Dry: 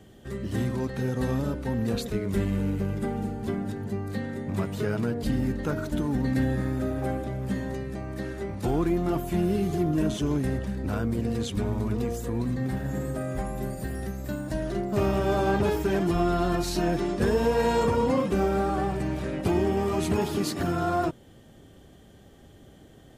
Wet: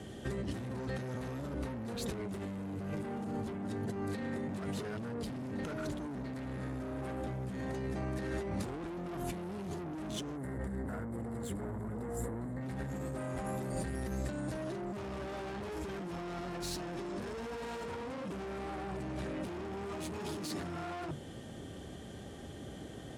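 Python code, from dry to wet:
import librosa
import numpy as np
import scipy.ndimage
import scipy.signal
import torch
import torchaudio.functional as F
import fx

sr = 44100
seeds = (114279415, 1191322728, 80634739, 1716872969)

y = scipy.signal.sosfilt(scipy.signal.butter(12, 12000.0, 'lowpass', fs=sr, output='sos'), x)
y = fx.hum_notches(y, sr, base_hz=50, count=3)
y = 10.0 ** (-31.5 / 20.0) * np.tanh(y / 10.0 ** (-31.5 / 20.0))
y = scipy.signal.sosfilt(scipy.signal.butter(2, 57.0, 'highpass', fs=sr, output='sos'), y)
y = fx.over_compress(y, sr, threshold_db=-40.0, ratio=-1.0)
y = fx.spec_box(y, sr, start_s=10.36, length_s=2.26, low_hz=2200.0, high_hz=7000.0, gain_db=-13)
y = F.gain(torch.from_numpy(y), 1.0).numpy()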